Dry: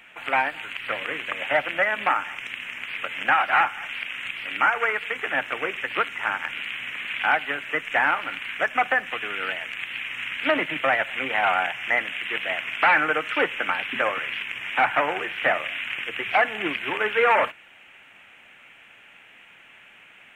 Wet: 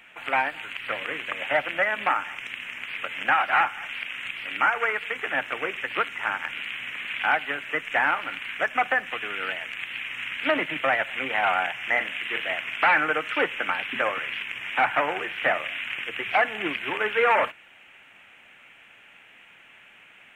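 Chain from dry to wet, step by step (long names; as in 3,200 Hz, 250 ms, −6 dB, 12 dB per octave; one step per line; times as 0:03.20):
0:11.87–0:12.54: double-tracking delay 40 ms −9 dB
level −1.5 dB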